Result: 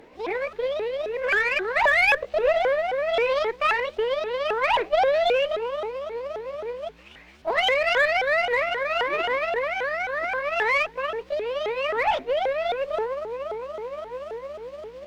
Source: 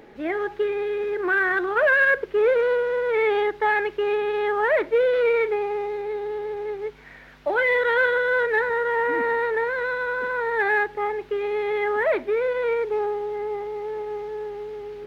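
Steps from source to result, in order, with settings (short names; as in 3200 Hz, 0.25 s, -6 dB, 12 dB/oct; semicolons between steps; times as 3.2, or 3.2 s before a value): repeated pitch sweeps +8 st, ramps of 0.265 s; added harmonics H 2 -15 dB, 7 -33 dB, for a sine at -11.5 dBFS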